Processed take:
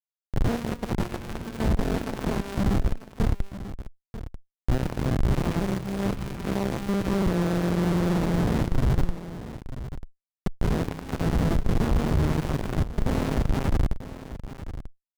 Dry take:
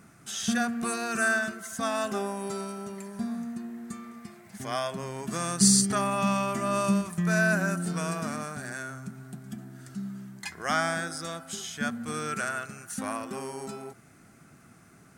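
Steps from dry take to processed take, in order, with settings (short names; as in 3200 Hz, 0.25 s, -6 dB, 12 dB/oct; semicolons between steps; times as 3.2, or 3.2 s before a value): G.711 law mismatch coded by A; 5.12–7.27 low shelf 92 Hz +11.5 dB; reverb, pre-delay 0.152 s, DRR -6.5 dB; Schmitt trigger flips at -26 dBFS; tilt -1.5 dB/oct; notch 2500 Hz, Q 21; echo 0.941 s -13 dB; running maximum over 65 samples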